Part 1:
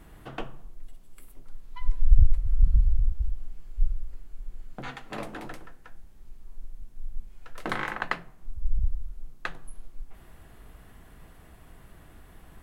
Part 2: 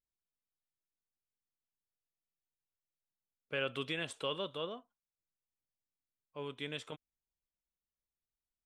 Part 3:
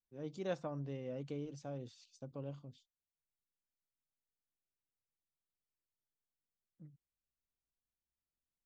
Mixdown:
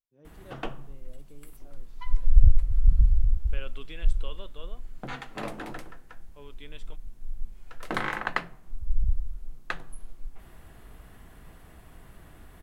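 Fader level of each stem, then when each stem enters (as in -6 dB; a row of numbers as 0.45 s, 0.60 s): +1.0 dB, -7.0 dB, -11.5 dB; 0.25 s, 0.00 s, 0.00 s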